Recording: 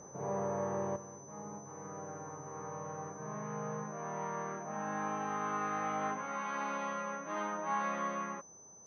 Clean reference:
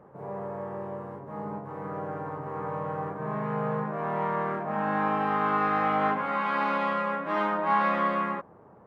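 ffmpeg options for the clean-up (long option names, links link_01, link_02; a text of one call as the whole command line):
ffmpeg -i in.wav -af "bandreject=frequency=6100:width=30,asetnsamples=nb_out_samples=441:pad=0,asendcmd='0.96 volume volume 10.5dB',volume=0dB" out.wav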